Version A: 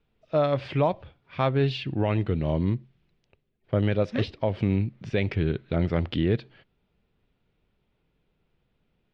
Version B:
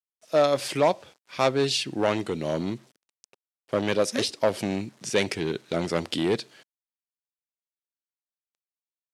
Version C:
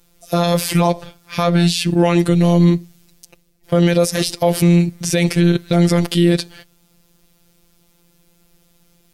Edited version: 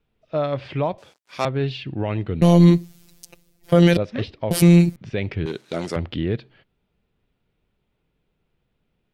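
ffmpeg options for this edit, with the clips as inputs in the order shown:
-filter_complex "[1:a]asplit=2[s0][s1];[2:a]asplit=2[s2][s3];[0:a]asplit=5[s4][s5][s6][s7][s8];[s4]atrim=end=0.982[s9];[s0]atrim=start=0.978:end=1.452[s10];[s5]atrim=start=1.448:end=2.422[s11];[s2]atrim=start=2.418:end=3.972[s12];[s6]atrim=start=3.968:end=4.512[s13];[s3]atrim=start=4.508:end=4.962[s14];[s7]atrim=start=4.958:end=5.462[s15];[s1]atrim=start=5.458:end=5.962[s16];[s8]atrim=start=5.958[s17];[s9][s10]acrossfade=d=0.004:c1=hsin:c2=hsin[s18];[s18][s11]acrossfade=d=0.004:c1=hsin:c2=hsin[s19];[s19][s12]acrossfade=d=0.004:c1=hsin:c2=hsin[s20];[s20][s13]acrossfade=d=0.004:c1=hsin:c2=hsin[s21];[s21][s14]acrossfade=d=0.004:c1=hsin:c2=hsin[s22];[s22][s15]acrossfade=d=0.004:c1=hsin:c2=hsin[s23];[s23][s16]acrossfade=d=0.004:c1=hsin:c2=hsin[s24];[s24][s17]acrossfade=d=0.004:c1=hsin:c2=hsin"

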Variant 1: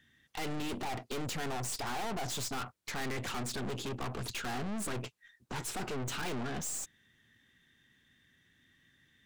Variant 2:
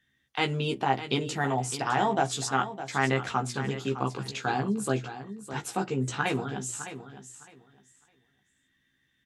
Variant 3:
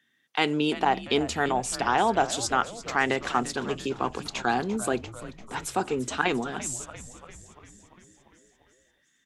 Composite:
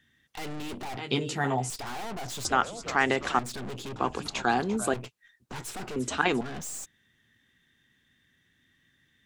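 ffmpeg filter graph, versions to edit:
-filter_complex "[2:a]asplit=3[s0][s1][s2];[0:a]asplit=5[s3][s4][s5][s6][s7];[s3]atrim=end=0.972[s8];[1:a]atrim=start=0.968:end=1.702[s9];[s4]atrim=start=1.698:end=2.452[s10];[s0]atrim=start=2.448:end=3.392[s11];[s5]atrim=start=3.388:end=3.962[s12];[s1]atrim=start=3.958:end=4.942[s13];[s6]atrim=start=4.938:end=5.962[s14];[s2]atrim=start=5.958:end=6.412[s15];[s7]atrim=start=6.408[s16];[s8][s9]acrossfade=d=0.004:c1=hsin:c2=hsin[s17];[s17][s10]acrossfade=d=0.004:c1=hsin:c2=hsin[s18];[s18][s11]acrossfade=d=0.004:c1=hsin:c2=hsin[s19];[s19][s12]acrossfade=d=0.004:c1=hsin:c2=hsin[s20];[s20][s13]acrossfade=d=0.004:c1=hsin:c2=hsin[s21];[s21][s14]acrossfade=d=0.004:c1=hsin:c2=hsin[s22];[s22][s15]acrossfade=d=0.004:c1=hsin:c2=hsin[s23];[s23][s16]acrossfade=d=0.004:c1=hsin:c2=hsin"

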